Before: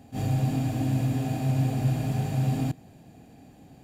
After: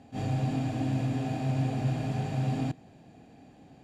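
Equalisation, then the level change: air absorption 76 m; low shelf 180 Hz -6.5 dB; 0.0 dB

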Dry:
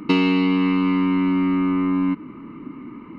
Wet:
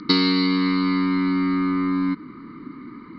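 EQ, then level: synth low-pass 4500 Hz, resonance Q 6.3; low shelf 350 Hz -6 dB; fixed phaser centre 2700 Hz, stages 6; +3.5 dB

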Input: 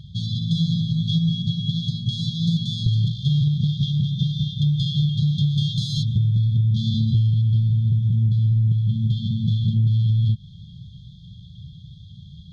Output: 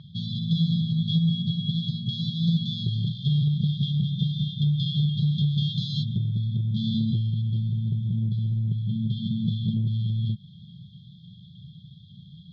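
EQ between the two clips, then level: Chebyshev band-pass 180–5500 Hz, order 2; air absorption 200 m; bell 1200 Hz +5.5 dB 2.4 oct; 0.0 dB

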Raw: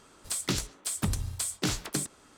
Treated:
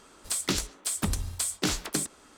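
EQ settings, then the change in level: bell 120 Hz -10 dB 0.58 oct; +2.5 dB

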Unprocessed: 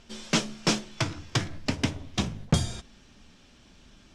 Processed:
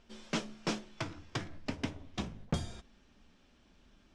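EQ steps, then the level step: bell 120 Hz -5.5 dB 0.99 oct; high shelf 3500 Hz -9 dB; -7.5 dB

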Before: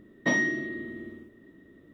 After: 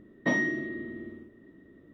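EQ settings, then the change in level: high shelf 3100 Hz -9.5 dB; 0.0 dB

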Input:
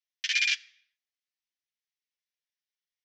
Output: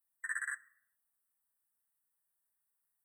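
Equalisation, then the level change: brick-wall FIR band-stop 2000–7800 Hz; high shelf 3300 Hz +9 dB; fixed phaser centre 1000 Hz, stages 4; +6.0 dB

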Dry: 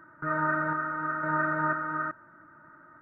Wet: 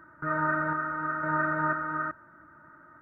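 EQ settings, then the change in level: bell 66 Hz +12 dB 0.47 oct; 0.0 dB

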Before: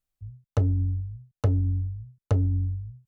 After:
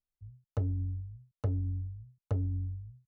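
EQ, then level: high shelf 2100 Hz -8 dB; -8.5 dB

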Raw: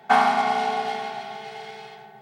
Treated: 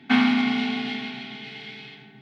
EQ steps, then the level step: EQ curve 130 Hz 0 dB, 180 Hz -8 dB, 280 Hz +13 dB, 430 Hz -16 dB, 740 Hz -23 dB, 1600 Hz -11 dB, 2300 Hz -2 dB, 3700 Hz -3 dB, 8100 Hz -22 dB; +8.0 dB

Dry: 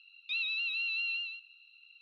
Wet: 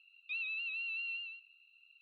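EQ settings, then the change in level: vowel filter a; +7.5 dB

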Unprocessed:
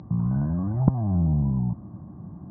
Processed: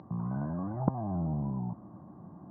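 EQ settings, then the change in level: band-pass 890 Hz, Q 0.54; 0.0 dB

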